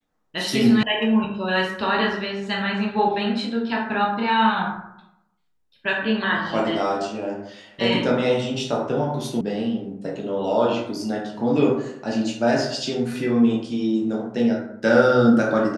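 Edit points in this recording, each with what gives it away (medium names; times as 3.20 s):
0.83 s: sound stops dead
9.41 s: sound stops dead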